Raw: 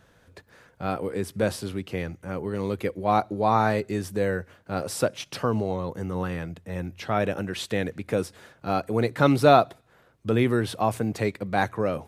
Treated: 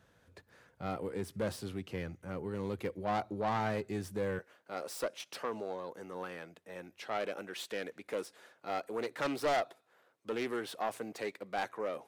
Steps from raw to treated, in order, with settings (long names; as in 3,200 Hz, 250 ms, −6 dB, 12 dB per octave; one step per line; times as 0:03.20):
phase distortion by the signal itself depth 0.31 ms
high-pass filter 47 Hz 12 dB per octave, from 0:04.39 380 Hz
soft clipping −17.5 dBFS, distortion −12 dB
level −8 dB